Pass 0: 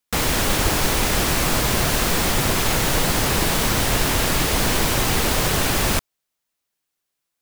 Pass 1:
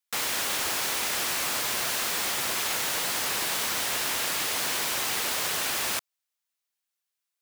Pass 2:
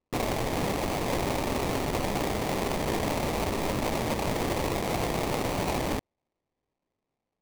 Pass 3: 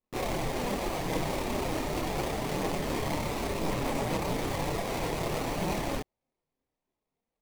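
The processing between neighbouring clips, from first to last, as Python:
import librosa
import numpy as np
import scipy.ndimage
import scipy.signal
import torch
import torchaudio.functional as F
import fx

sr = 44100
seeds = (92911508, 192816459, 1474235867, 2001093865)

y1 = fx.highpass(x, sr, hz=1200.0, slope=6)
y1 = y1 * librosa.db_to_amplitude(-5.0)
y2 = fx.sample_hold(y1, sr, seeds[0], rate_hz=1500.0, jitter_pct=20)
y3 = fx.chorus_voices(y2, sr, voices=4, hz=0.33, base_ms=29, depth_ms=4.2, mix_pct=60)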